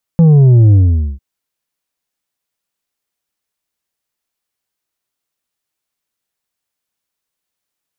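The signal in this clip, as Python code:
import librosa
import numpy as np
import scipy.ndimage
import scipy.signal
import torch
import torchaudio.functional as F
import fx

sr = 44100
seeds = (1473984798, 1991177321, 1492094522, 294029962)

y = fx.sub_drop(sr, level_db=-4.5, start_hz=170.0, length_s=1.0, drive_db=5.5, fade_s=0.46, end_hz=65.0)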